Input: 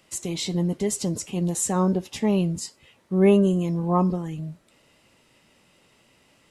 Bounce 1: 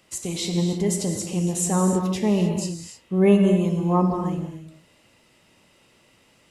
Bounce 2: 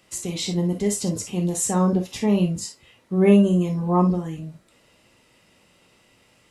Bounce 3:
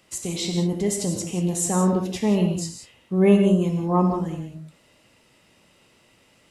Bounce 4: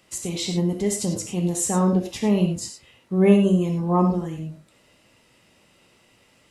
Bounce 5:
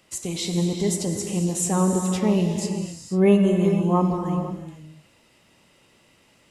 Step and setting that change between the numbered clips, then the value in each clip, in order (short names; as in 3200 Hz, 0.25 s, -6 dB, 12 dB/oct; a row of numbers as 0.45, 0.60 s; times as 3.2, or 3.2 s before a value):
non-linear reverb, gate: 330, 80, 210, 130, 520 ms